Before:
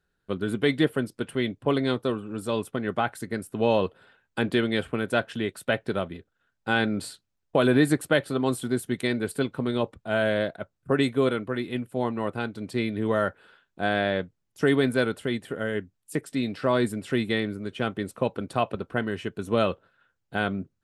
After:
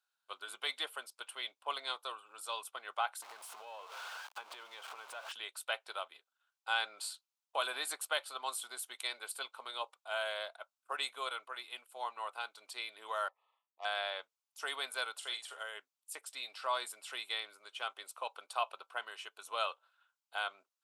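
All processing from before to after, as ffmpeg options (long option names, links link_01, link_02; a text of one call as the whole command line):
ffmpeg -i in.wav -filter_complex "[0:a]asettb=1/sr,asplit=3[link_01][link_02][link_03];[link_01]atrim=end=3.224[link_04];[link_02]atrim=start=3.22:end=5.32,asetpts=PTS-STARTPTS,afade=type=in:duration=0.004:curve=qsin,afade=type=out:start_time=2.096:duration=0.004:curve=qsin,aeval=exprs='val(0)+0.5*0.0422*sgn(val(0))':channel_layout=same,lowpass=frequency=1500:poles=1,acompressor=threshold=-28dB:ratio=8:attack=3.2:release=140:knee=1:detection=peak[link_05];[link_03]atrim=start=5.316[link_06];[link_04][link_05]acrossfade=duration=0.004:curve1=hsin:curve2=qsin[link_07];[link_07][link_06]acrossfade=duration=0.004:curve1=qsin:curve2=hsin,asettb=1/sr,asplit=3[link_08][link_09][link_10];[link_08]atrim=end=13.284[link_11];[link_09]atrim=start=13.28:end=13.85,asetpts=PTS-STARTPTS,afade=type=in:duration=0.004:curve=qsin,afade=type=out:start_time=0.566:duration=0.004:curve=qsin,adynamicsmooth=sensitivity=1:basefreq=1200,asuperstop=centerf=1500:order=12:qfactor=3.6,lowshelf=frequency=380:gain=-11.5[link_12];[link_10]atrim=start=13.846[link_13];[link_11][link_12]acrossfade=duration=0.004:curve1=hsin:curve2=qsin[link_14];[link_14][link_13]acrossfade=duration=0.004:curve1=qsin:curve2=hsin,asettb=1/sr,asplit=3[link_15][link_16][link_17];[link_15]atrim=end=15.184[link_18];[link_16]atrim=start=15.18:end=15.63,asetpts=PTS-STARTPTS,afade=type=in:duration=0.004:curve=qsin,afade=type=out:start_time=0.446:duration=0.004:curve=qsin,lowpass=6700,bass=frequency=250:gain=-4,treble=frequency=4000:gain=11,asplit=2[link_19][link_20];[link_20]adelay=44,volume=-7.5dB[link_21];[link_19][link_21]amix=inputs=2:normalize=0,atrim=end_sample=19845[link_22];[link_17]atrim=start=15.626[link_23];[link_18][link_22]acrossfade=duration=0.004:curve1=hsin:curve2=qsin[link_24];[link_24][link_23]acrossfade=duration=0.004:curve1=qsin:curve2=hsin,highpass=frequency=890:width=0.5412,highpass=frequency=890:width=1.3066,equalizer=frequency=1800:width_type=o:width=0.55:gain=-13,volume=-2dB" out.wav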